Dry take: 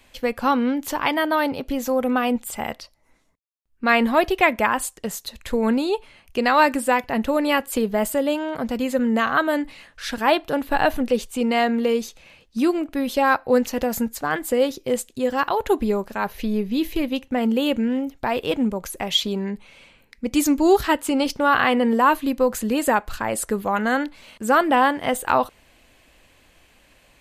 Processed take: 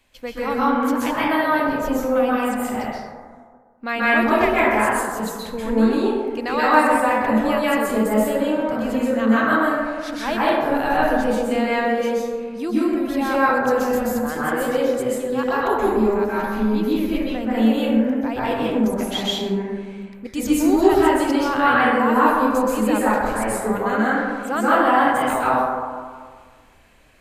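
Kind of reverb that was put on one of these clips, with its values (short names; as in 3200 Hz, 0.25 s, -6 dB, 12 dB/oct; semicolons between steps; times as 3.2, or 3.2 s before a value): plate-style reverb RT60 1.7 s, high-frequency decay 0.3×, pre-delay 0.115 s, DRR -9 dB; gain -8 dB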